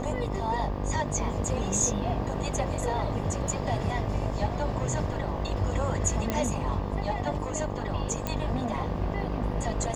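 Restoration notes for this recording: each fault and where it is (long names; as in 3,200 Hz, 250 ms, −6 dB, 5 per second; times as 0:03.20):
mains buzz 50 Hz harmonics 24 −33 dBFS
0:06.30: click −13 dBFS
0:08.27: click −14 dBFS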